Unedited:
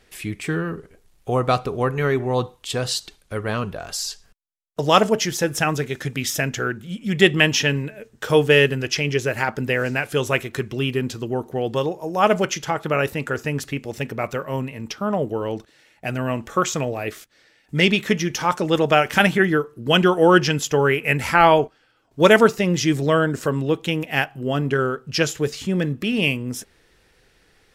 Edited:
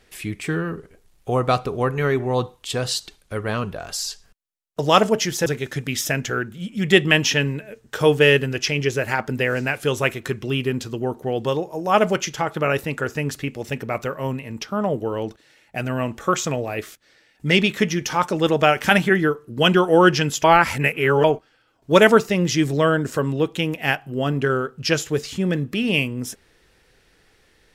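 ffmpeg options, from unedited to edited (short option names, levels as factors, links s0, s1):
-filter_complex "[0:a]asplit=4[s0][s1][s2][s3];[s0]atrim=end=5.462[s4];[s1]atrim=start=5.748:end=20.732[s5];[s2]atrim=start=20.728:end=21.532,asetpts=PTS-STARTPTS,areverse[s6];[s3]atrim=start=21.528[s7];[s4][s5]acrossfade=d=0.004:c1=hsin:c2=hsin[s8];[s8][s6]acrossfade=d=0.004:c1=hsin:c2=hsin[s9];[s9][s7]acrossfade=d=0.004:c1=hsin:c2=hsin"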